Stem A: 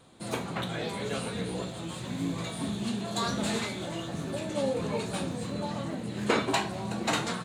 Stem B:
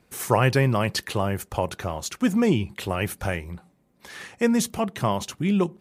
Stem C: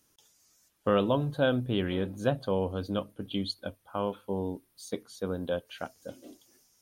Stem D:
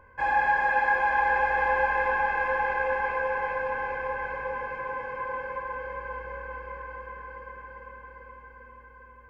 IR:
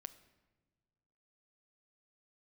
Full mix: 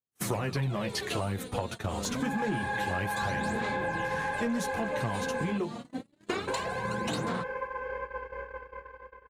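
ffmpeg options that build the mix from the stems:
-filter_complex "[0:a]aphaser=in_gain=1:out_gain=1:delay=4.4:decay=0.7:speed=0.27:type=sinusoidal,acontrast=49,volume=-10dB,asplit=2[link_01][link_02];[link_02]volume=-7dB[link_03];[1:a]acrossover=split=400[link_04][link_05];[link_05]acompressor=threshold=-25dB:ratio=2.5[link_06];[link_04][link_06]amix=inputs=2:normalize=0,highshelf=frequency=7800:gain=-3,flanger=delay=8.6:depth=6.1:regen=1:speed=0.6:shape=sinusoidal,volume=3dB,asplit=2[link_07][link_08];[link_08]volume=-9dB[link_09];[2:a]bass=frequency=250:gain=12,treble=frequency=4000:gain=1,adelay=1050,volume=-14.5dB[link_10];[3:a]highshelf=frequency=2700:gain=6,acompressor=mode=upward:threshold=-26dB:ratio=2.5,equalizer=frequency=430:width=5.2:gain=14,adelay=2050,volume=-2dB,asplit=3[link_11][link_12][link_13];[link_11]atrim=end=5.58,asetpts=PTS-STARTPTS,afade=type=out:start_time=5.576:duration=0.004:curve=hsin[link_14];[link_12]atrim=start=5.58:end=6.47,asetpts=PTS-STARTPTS,volume=0[link_15];[link_13]atrim=start=6.47,asetpts=PTS-STARTPTS,afade=type=in:duration=0.004:curve=hsin[link_16];[link_14][link_15][link_16]concat=n=3:v=0:a=1,asplit=2[link_17][link_18];[link_18]volume=-23.5dB[link_19];[4:a]atrim=start_sample=2205[link_20];[link_03][link_09][link_19]amix=inputs=3:normalize=0[link_21];[link_21][link_20]afir=irnorm=-1:irlink=0[link_22];[link_01][link_07][link_10][link_17][link_22]amix=inputs=5:normalize=0,agate=range=-53dB:threshold=-31dB:ratio=16:detection=peak,asoftclip=type=tanh:threshold=-11dB,acompressor=threshold=-29dB:ratio=5"

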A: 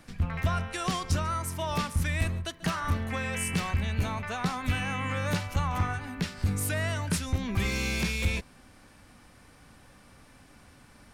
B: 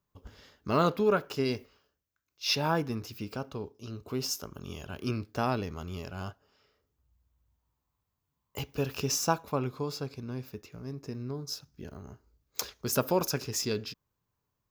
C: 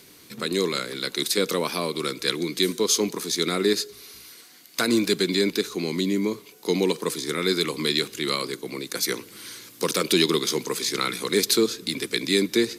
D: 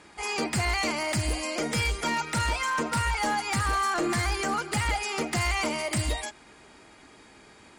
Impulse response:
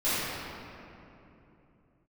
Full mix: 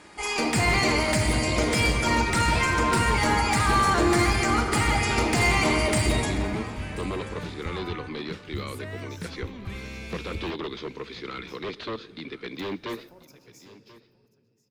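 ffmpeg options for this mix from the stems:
-filter_complex "[0:a]aemphasis=mode=reproduction:type=cd,adelay=2100,volume=-8dB,asplit=2[link_01][link_02];[link_02]volume=-15.5dB[link_03];[1:a]acompressor=threshold=-38dB:ratio=3,volume=-16dB,asplit=3[link_04][link_05][link_06];[link_05]volume=-17.5dB[link_07];[link_06]volume=-19dB[link_08];[2:a]aeval=exprs='0.119*(abs(mod(val(0)/0.119+3,4)-2)-1)':channel_layout=same,lowpass=frequency=3500:width=0.5412,lowpass=frequency=3500:width=1.3066,adelay=300,volume=-7dB,asplit=2[link_09][link_10];[link_10]volume=-19dB[link_11];[3:a]volume=1dB,asplit=3[link_12][link_13][link_14];[link_13]volume=-13dB[link_15];[link_14]volume=-18dB[link_16];[4:a]atrim=start_sample=2205[link_17];[link_07][link_15]amix=inputs=2:normalize=0[link_18];[link_18][link_17]afir=irnorm=-1:irlink=0[link_19];[link_03][link_08][link_11][link_16]amix=inputs=4:normalize=0,aecho=0:1:1035:1[link_20];[link_01][link_04][link_09][link_12][link_19][link_20]amix=inputs=6:normalize=0"

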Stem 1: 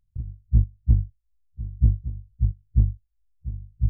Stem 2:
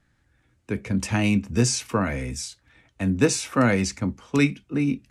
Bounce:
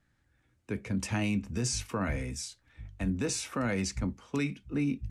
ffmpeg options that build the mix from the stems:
ffmpeg -i stem1.wav -i stem2.wav -filter_complex "[0:a]adelay=1200,volume=-13dB[link_01];[1:a]volume=-6dB,asplit=2[link_02][link_03];[link_03]apad=whole_len=224796[link_04];[link_01][link_04]sidechaincompress=threshold=-31dB:ratio=8:attack=16:release=634[link_05];[link_05][link_02]amix=inputs=2:normalize=0,alimiter=limit=-22dB:level=0:latency=1:release=49" out.wav

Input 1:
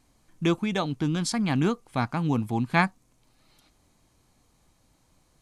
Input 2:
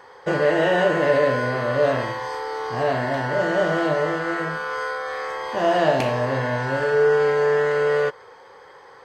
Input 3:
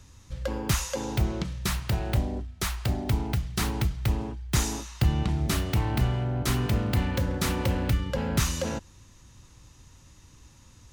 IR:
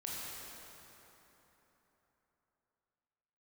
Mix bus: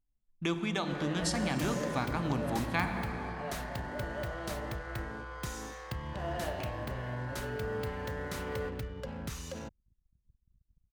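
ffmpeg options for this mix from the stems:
-filter_complex "[0:a]volume=-1.5dB,asplit=2[link_01][link_02];[link_02]volume=-11dB[link_03];[1:a]highshelf=frequency=5200:gain=-9,adelay=600,volume=-16.5dB,asplit=2[link_04][link_05];[link_05]volume=-13dB[link_06];[2:a]acompressor=threshold=-25dB:ratio=6,acrusher=bits=7:mix=0:aa=0.5,adelay=900,volume=-10.5dB[link_07];[link_01][link_04]amix=inputs=2:normalize=0,lowshelf=frequency=430:gain=-11,acompressor=threshold=-32dB:ratio=6,volume=0dB[link_08];[3:a]atrim=start_sample=2205[link_09];[link_03][link_06]amix=inputs=2:normalize=0[link_10];[link_10][link_09]afir=irnorm=-1:irlink=0[link_11];[link_07][link_08][link_11]amix=inputs=3:normalize=0,anlmdn=0.00398"

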